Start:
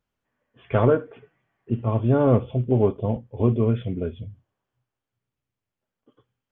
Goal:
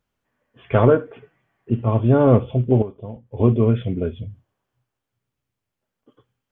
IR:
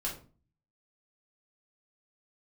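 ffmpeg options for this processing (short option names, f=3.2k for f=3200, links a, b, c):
-filter_complex "[0:a]asettb=1/sr,asplit=3[a][b][c];[a]atrim=end=2.824[d];[b]atrim=start=2.82:end=3.32,asetpts=PTS-STARTPTS,afade=t=in:d=0.004:c=qsin,afade=t=out:st=0.496:d=0.004:c=qsin,acompressor=threshold=-40dB:ratio=2.5[e];[c]atrim=start=3.316[f];[d][e]acrossfade=d=0.004:c1=hsin:c2=qsin[g];[g][f]acrossfade=d=0.004:c1=qsin:c2=hsin,volume=4dB"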